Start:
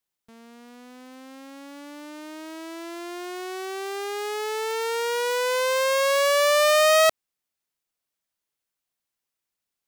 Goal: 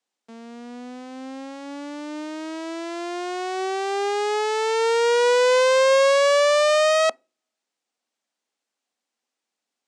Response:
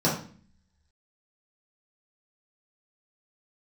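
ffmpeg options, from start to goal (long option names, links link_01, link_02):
-filter_complex "[0:a]alimiter=limit=-19dB:level=0:latency=1,highpass=frequency=210:width=0.5412,highpass=frequency=210:width=1.3066,equalizer=frequency=250:width_type=q:width=4:gain=8,equalizer=frequency=500:width_type=q:width=4:gain=4,equalizer=frequency=770:width_type=q:width=4:gain=5,lowpass=frequency=8100:width=0.5412,lowpass=frequency=8100:width=1.3066,asplit=2[link_01][link_02];[1:a]atrim=start_sample=2205,asetrate=74970,aresample=44100[link_03];[link_02][link_03]afir=irnorm=-1:irlink=0,volume=-34dB[link_04];[link_01][link_04]amix=inputs=2:normalize=0,volume=4dB"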